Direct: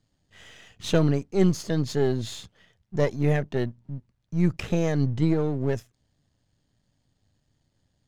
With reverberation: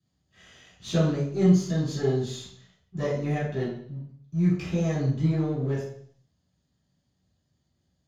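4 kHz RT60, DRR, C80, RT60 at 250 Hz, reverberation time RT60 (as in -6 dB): 0.70 s, -11.0 dB, 7.0 dB, 0.60 s, 0.60 s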